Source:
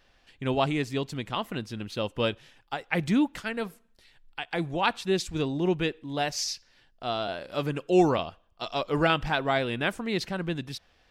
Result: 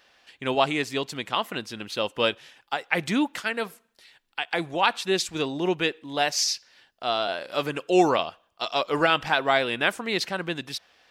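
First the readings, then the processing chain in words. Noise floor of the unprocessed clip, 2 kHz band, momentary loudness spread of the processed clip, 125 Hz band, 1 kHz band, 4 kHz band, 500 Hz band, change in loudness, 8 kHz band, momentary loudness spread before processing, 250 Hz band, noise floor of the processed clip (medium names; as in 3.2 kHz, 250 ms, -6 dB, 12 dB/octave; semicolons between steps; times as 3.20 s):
-64 dBFS, +5.5 dB, 11 LU, -5.5 dB, +4.5 dB, +6.0 dB, +2.5 dB, +3.0 dB, +6.5 dB, 13 LU, -0.5 dB, -67 dBFS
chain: high-pass 580 Hz 6 dB/octave; loudness maximiser +12.5 dB; trim -6 dB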